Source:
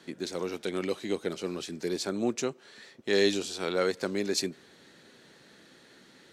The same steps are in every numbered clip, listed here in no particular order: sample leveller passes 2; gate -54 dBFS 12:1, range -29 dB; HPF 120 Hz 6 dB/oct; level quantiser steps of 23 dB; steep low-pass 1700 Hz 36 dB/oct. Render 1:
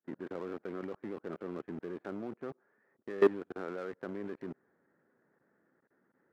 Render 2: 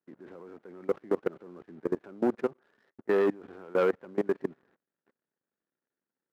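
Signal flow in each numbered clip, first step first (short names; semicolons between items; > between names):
gate > steep low-pass > level quantiser > sample leveller > HPF; steep low-pass > sample leveller > gate > level quantiser > HPF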